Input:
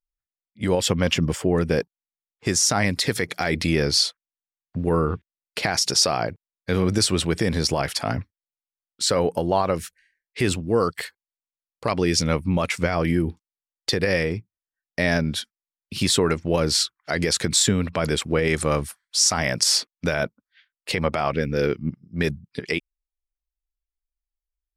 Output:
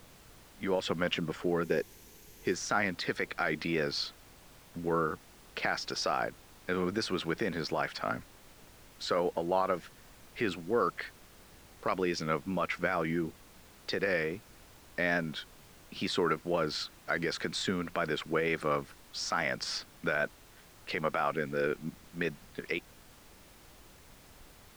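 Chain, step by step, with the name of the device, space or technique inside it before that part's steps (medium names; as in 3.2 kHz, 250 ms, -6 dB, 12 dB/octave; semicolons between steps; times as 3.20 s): horn gramophone (band-pass 210–3400 Hz; peaking EQ 1.4 kHz +7 dB 0.53 oct; wow and flutter; pink noise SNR 21 dB); 1.63–2.54 s: graphic EQ with 31 bands 400 Hz +7 dB, 630 Hz -8 dB, 1.25 kHz -9 dB, 6.3 kHz +7 dB, 12.5 kHz +9 dB; trim -8.5 dB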